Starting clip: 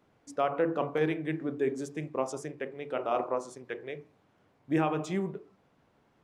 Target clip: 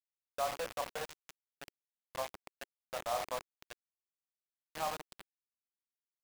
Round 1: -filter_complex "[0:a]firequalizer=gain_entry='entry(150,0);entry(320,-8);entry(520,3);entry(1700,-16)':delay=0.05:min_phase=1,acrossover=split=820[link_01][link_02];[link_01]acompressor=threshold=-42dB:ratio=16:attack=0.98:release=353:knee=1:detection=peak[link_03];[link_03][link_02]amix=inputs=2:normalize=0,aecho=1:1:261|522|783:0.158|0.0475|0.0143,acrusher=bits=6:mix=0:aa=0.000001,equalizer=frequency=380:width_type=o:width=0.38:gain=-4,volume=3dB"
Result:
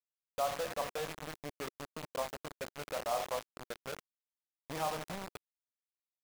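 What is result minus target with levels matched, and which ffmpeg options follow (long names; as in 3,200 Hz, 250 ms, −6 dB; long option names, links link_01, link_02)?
downward compressor: peak gain reduction −10.5 dB
-filter_complex "[0:a]firequalizer=gain_entry='entry(150,0);entry(320,-8);entry(520,3);entry(1700,-16)':delay=0.05:min_phase=1,acrossover=split=820[link_01][link_02];[link_01]acompressor=threshold=-53dB:ratio=16:attack=0.98:release=353:knee=1:detection=peak[link_03];[link_03][link_02]amix=inputs=2:normalize=0,aecho=1:1:261|522|783:0.158|0.0475|0.0143,acrusher=bits=6:mix=0:aa=0.000001,equalizer=frequency=380:width_type=o:width=0.38:gain=-4,volume=3dB"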